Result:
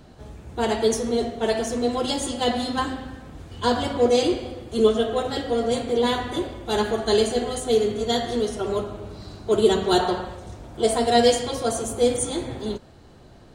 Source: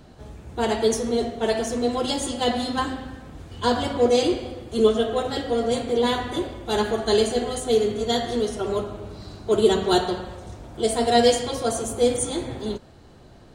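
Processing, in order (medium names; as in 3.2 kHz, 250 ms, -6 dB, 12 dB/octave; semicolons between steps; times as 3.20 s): 9.99–10.98 s: dynamic bell 970 Hz, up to +6 dB, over -39 dBFS, Q 0.87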